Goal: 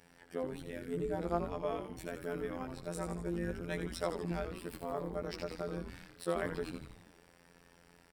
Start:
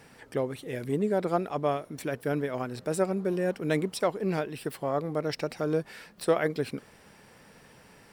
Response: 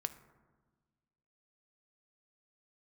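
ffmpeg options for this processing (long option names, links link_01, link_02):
-filter_complex "[0:a]afftfilt=real='hypot(re,im)*cos(PI*b)':imag='0':win_size=2048:overlap=0.75,asplit=2[link_01][link_02];[link_02]asplit=8[link_03][link_04][link_05][link_06][link_07][link_08][link_09][link_10];[link_03]adelay=81,afreqshift=-120,volume=-7.5dB[link_11];[link_04]adelay=162,afreqshift=-240,volume=-11.9dB[link_12];[link_05]adelay=243,afreqshift=-360,volume=-16.4dB[link_13];[link_06]adelay=324,afreqshift=-480,volume=-20.8dB[link_14];[link_07]adelay=405,afreqshift=-600,volume=-25.2dB[link_15];[link_08]adelay=486,afreqshift=-720,volume=-29.7dB[link_16];[link_09]adelay=567,afreqshift=-840,volume=-34.1dB[link_17];[link_10]adelay=648,afreqshift=-960,volume=-38.6dB[link_18];[link_11][link_12][link_13][link_14][link_15][link_16][link_17][link_18]amix=inputs=8:normalize=0[link_19];[link_01][link_19]amix=inputs=2:normalize=0,volume=-6dB"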